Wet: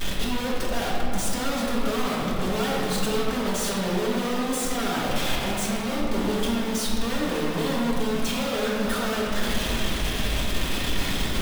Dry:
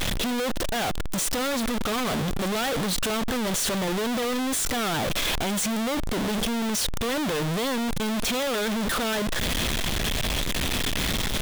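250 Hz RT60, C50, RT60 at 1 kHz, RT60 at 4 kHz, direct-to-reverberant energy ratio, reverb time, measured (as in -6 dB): 3.2 s, -1.5 dB, 2.9 s, 1.4 s, -6.5 dB, 2.9 s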